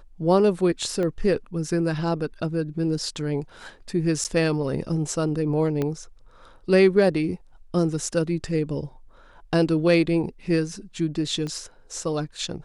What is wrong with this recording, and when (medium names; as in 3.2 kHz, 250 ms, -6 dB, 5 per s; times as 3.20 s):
1.03 s: pop -18 dBFS
4.24–4.25 s: dropout 8.6 ms
5.82 s: pop -14 dBFS
11.47 s: pop -21 dBFS